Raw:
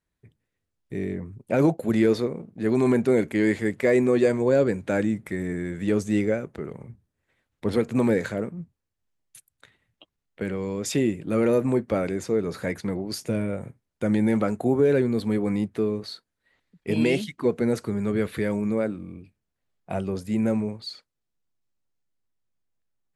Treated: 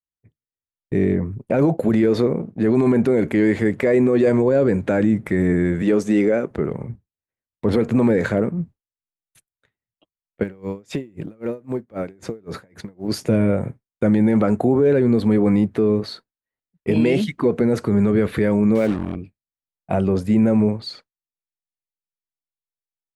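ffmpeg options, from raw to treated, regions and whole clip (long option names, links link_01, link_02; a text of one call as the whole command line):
ffmpeg -i in.wav -filter_complex "[0:a]asettb=1/sr,asplit=3[link_01][link_02][link_03];[link_01]atrim=end=5.824[link_04];[link_02]atrim=start=5.82:end=6.51,asetpts=PTS-STARTPTS,afade=type=in:duration=0.004:curve=qsin,afade=type=out:start_time=0.686:duration=0.004:curve=qsin,highpass=230,equalizer=frequency=5500:width=5.4:gain=3[link_05];[link_03]atrim=start=6.506[link_06];[link_04][link_05]acrossfade=duration=0.004:curve1=hsin:curve2=qsin[link_07];[link_07][link_06]acrossfade=duration=0.004:curve1=qsin:curve2=hsin,asettb=1/sr,asplit=3[link_08][link_09][link_10];[link_08]atrim=end=10.434[link_11];[link_09]atrim=start=10.43:end=13.08,asetpts=PTS-STARTPTS,afade=type=in:duration=0.004:curve=qsin,afade=type=out:start_time=2.646:duration=0.004:curve=qsin,acompressor=threshold=-30dB:ratio=10:attack=3.2:release=140:knee=1:detection=peak,acrusher=bits=9:mode=log:mix=0:aa=0.000001,aeval=exprs='val(0)*pow(10,-21*(0.5-0.5*cos(2*PI*3.8*n/s))/20)':channel_layout=same[link_12];[link_10]atrim=start=13.076[link_13];[link_11][link_12]acrossfade=duration=0.004:curve1=hsin:curve2=qsin[link_14];[link_14][link_13]acrossfade=duration=0.004:curve1=qsin:curve2=hsin,asettb=1/sr,asplit=3[link_15][link_16][link_17];[link_15]atrim=end=18.754[link_18];[link_16]atrim=start=18.75:end=19.16,asetpts=PTS-STARTPTS,afade=type=in:duration=0.004:curve=qsin,afade=type=out:start_time=0.406:duration=0.004:curve=qsin,highshelf=frequency=2000:width_type=q:width=1.5:gain=6.5,acrusher=bits=5:mix=0:aa=0.5[link_19];[link_17]atrim=start=19.156[link_20];[link_18][link_19]acrossfade=duration=0.004:curve1=hsin:curve2=qsin[link_21];[link_21][link_20]acrossfade=duration=0.004:curve1=qsin:curve2=hsin,agate=range=-33dB:threshold=-41dB:ratio=3:detection=peak,highshelf=frequency=2800:gain=-11,alimiter=level_in=19.5dB:limit=-1dB:release=50:level=0:latency=1,volume=-8dB" out.wav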